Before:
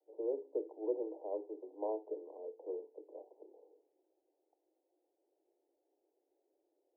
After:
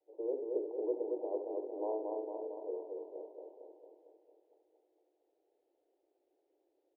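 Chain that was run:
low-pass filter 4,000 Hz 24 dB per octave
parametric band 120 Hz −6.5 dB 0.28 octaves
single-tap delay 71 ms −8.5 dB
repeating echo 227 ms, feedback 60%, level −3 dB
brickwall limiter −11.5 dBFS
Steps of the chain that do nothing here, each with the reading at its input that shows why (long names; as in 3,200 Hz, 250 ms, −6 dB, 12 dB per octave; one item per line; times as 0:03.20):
low-pass filter 4,000 Hz: nothing at its input above 1,000 Hz
parametric band 120 Hz: nothing at its input below 270 Hz
brickwall limiter −11.5 dBFS: peak of its input −23.5 dBFS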